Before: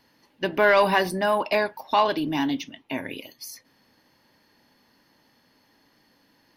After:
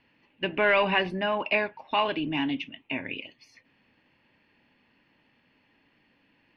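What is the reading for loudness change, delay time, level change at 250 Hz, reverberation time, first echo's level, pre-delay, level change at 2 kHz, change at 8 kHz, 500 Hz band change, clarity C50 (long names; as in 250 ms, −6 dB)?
−4.0 dB, no echo audible, −3.5 dB, no reverb audible, no echo audible, no reverb audible, −1.5 dB, below −20 dB, −5.0 dB, no reverb audible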